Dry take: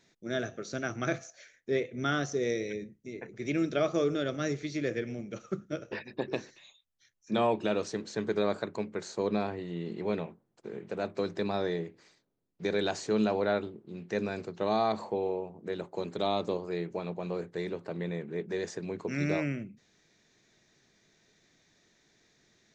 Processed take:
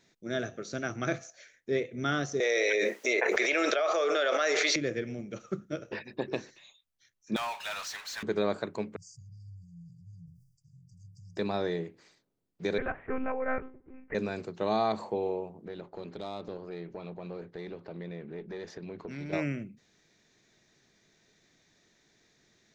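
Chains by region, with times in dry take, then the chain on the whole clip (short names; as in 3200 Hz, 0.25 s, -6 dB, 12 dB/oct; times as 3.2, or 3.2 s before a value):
2.4–4.76 HPF 570 Hz 24 dB/oct + high shelf 4900 Hz -9.5 dB + fast leveller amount 100%
7.36–8.23 Bessel high-pass 1400 Hz, order 8 + high shelf 5000 Hz -9 dB + power-law curve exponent 0.5
8.96–11.37 brick-wall FIR band-stop 160–4600 Hz + high shelf 3700 Hz -7.5 dB + sustainer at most 70 dB/s
12.78–14.15 steep low-pass 2200 Hz 48 dB/oct + tilt +3 dB/oct + monotone LPC vocoder at 8 kHz 260 Hz
15.65–19.33 LPF 5100 Hz 24 dB/oct + compressor 2:1, threshold -38 dBFS + tube stage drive 29 dB, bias 0.35
whole clip: dry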